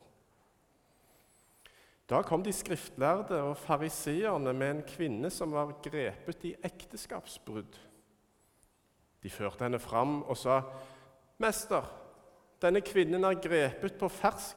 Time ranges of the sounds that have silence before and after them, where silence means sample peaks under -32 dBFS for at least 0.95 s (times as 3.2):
2.11–7.6